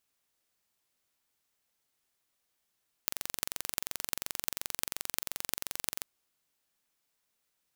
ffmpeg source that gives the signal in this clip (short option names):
-f lavfi -i "aevalsrc='0.891*eq(mod(n,1934),0)*(0.5+0.5*eq(mod(n,15472),0))':d=2.96:s=44100"